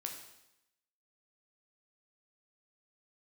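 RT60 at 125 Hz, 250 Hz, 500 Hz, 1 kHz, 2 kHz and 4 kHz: 0.85, 0.90, 0.85, 0.85, 0.85, 0.85 s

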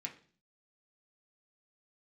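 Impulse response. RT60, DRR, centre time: 0.45 s, -0.5 dB, 12 ms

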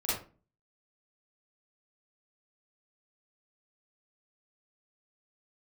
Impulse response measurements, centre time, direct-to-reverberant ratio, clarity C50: 57 ms, -10.0 dB, -0.5 dB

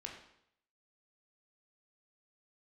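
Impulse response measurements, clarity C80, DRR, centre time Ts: 8.0 dB, 0.5 dB, 32 ms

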